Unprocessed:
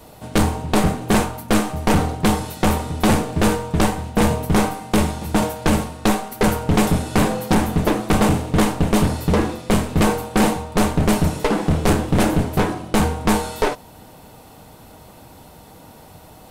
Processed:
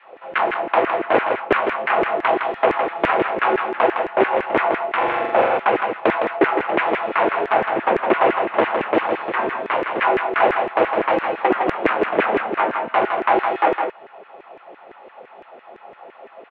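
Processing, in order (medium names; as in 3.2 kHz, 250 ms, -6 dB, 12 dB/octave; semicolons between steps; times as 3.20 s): mistuned SSB -91 Hz 230–2800 Hz; multi-tap echo 114/160 ms -18/-5.5 dB; LFO high-pass saw down 5.9 Hz 340–1900 Hz; 4.97–5.58 s: flutter echo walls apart 7.3 m, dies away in 0.8 s; trim +1.5 dB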